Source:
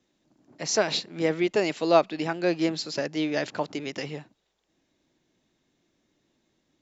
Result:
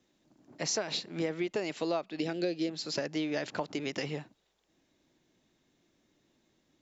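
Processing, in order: 2.2–2.7 graphic EQ 250/500/1000/4000 Hz +4/+7/-12/+8 dB; compressor 8:1, threshold -29 dBFS, peak gain reduction 15.5 dB

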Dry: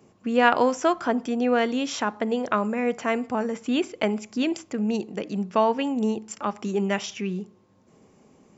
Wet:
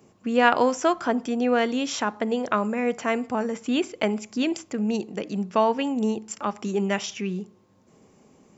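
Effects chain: high shelf 6500 Hz +4.5 dB

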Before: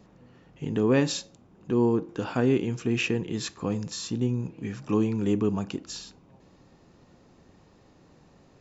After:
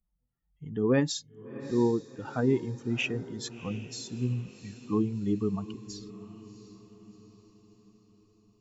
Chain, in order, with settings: per-bin expansion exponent 2; diffused feedback echo 0.706 s, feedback 50%, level -15 dB

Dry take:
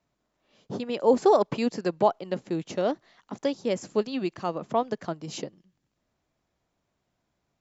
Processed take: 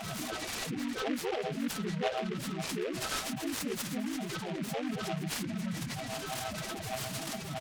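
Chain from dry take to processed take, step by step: delta modulation 32 kbps, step -22 dBFS; HPF 85 Hz 12 dB/oct; high shelf 2900 Hz +11.5 dB; limiter -18.5 dBFS, peak gain reduction 11 dB; formant shift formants -5 st; resonator 650 Hz, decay 0.27 s, mix 80%; harmoniser -4 st -18 dB, +3 st -1 dB; on a send: echo 0.809 s -19.5 dB; on the sum: loudest bins only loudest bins 8; noise-modulated delay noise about 1900 Hz, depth 0.098 ms; gain +7 dB

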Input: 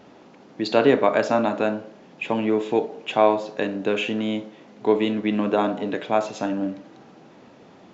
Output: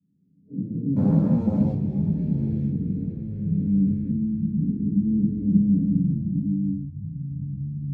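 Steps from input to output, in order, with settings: time blur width 0.748 s; HPF 78 Hz 12 dB/oct; spectral noise reduction 29 dB; inverse Chebyshev low-pass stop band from 730 Hz, stop band 70 dB; 0.96–1.73 sample leveller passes 2; echoes that change speed 0.105 s, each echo -7 st, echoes 3, each echo -6 dB; reverb, pre-delay 3 ms, DRR -13 dB; gain +5.5 dB

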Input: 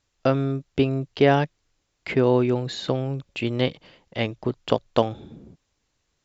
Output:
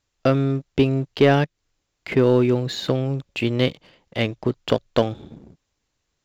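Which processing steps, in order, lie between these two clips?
dynamic EQ 860 Hz, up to -5 dB, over -36 dBFS, Q 1.7; sample leveller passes 1; 1.44–2.12 compressor 2:1, threshold -37 dBFS, peak gain reduction 8 dB

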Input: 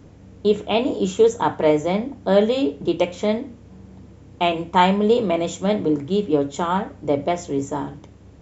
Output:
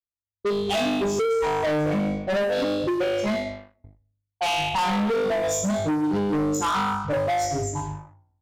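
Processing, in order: per-bin expansion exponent 3; gate -52 dBFS, range -40 dB; on a send: flutter echo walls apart 3.4 m, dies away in 0.81 s; on the sum: compressor 6:1, threshold -25 dBFS, peak gain reduction 16 dB; sample leveller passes 3; flange 0.3 Hz, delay 7.9 ms, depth 8.6 ms, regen -85%; in parallel at -4 dB: wavefolder -26.5 dBFS; on the sum: low-pass opened by the level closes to 960 Hz, open at -22 dBFS

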